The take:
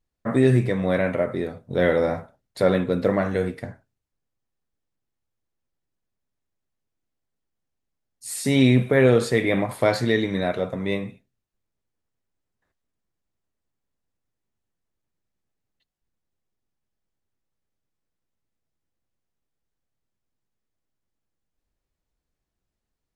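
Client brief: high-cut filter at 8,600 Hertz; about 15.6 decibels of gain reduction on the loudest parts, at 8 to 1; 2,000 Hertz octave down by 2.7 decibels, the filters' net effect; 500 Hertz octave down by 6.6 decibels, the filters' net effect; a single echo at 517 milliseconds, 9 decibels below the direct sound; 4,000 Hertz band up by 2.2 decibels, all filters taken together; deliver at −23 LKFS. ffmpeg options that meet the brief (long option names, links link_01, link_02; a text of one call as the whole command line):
ffmpeg -i in.wav -af "lowpass=8600,equalizer=frequency=500:width_type=o:gain=-8,equalizer=frequency=2000:width_type=o:gain=-3.5,equalizer=frequency=4000:width_type=o:gain=3.5,acompressor=threshold=-31dB:ratio=8,aecho=1:1:517:0.355,volume=13dB" out.wav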